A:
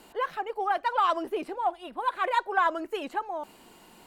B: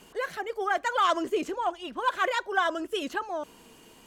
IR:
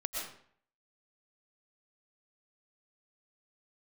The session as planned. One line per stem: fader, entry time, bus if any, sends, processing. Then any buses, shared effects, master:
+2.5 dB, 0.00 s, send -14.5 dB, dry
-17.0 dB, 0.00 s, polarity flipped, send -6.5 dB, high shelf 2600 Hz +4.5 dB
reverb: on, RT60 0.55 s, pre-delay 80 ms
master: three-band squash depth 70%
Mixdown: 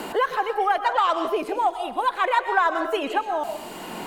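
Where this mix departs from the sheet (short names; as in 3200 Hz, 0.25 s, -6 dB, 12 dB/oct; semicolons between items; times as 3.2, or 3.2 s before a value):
stem B: missing high shelf 2600 Hz +4.5 dB; reverb return +7.5 dB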